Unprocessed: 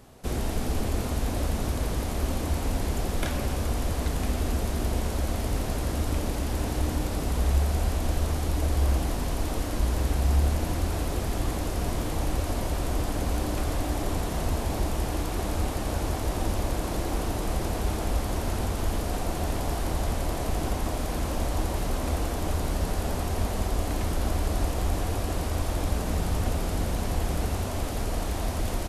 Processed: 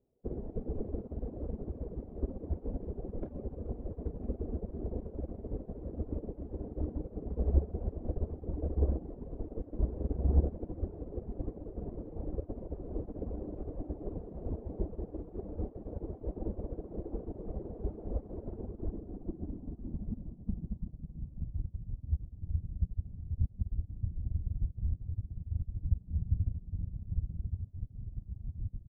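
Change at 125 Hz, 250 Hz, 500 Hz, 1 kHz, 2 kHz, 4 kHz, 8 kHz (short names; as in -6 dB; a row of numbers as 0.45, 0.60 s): -8.5 dB, -9.5 dB, -10.0 dB, -23.0 dB, under -35 dB, under -40 dB, under -40 dB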